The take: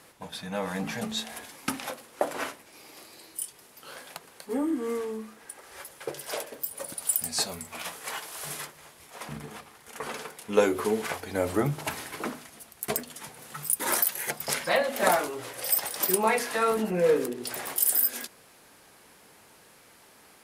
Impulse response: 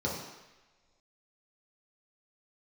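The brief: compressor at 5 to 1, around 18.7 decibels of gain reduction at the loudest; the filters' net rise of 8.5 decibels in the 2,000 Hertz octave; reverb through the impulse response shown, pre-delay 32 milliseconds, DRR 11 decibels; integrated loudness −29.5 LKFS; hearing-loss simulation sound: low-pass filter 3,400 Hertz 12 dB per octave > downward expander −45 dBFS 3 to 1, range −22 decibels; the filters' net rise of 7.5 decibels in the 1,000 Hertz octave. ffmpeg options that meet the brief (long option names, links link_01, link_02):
-filter_complex "[0:a]equalizer=frequency=1000:width_type=o:gain=7.5,equalizer=frequency=2000:width_type=o:gain=8.5,acompressor=threshold=-35dB:ratio=5,asplit=2[link_01][link_02];[1:a]atrim=start_sample=2205,adelay=32[link_03];[link_02][link_03]afir=irnorm=-1:irlink=0,volume=-18.5dB[link_04];[link_01][link_04]amix=inputs=2:normalize=0,lowpass=3400,agate=range=-22dB:threshold=-45dB:ratio=3,volume=9.5dB"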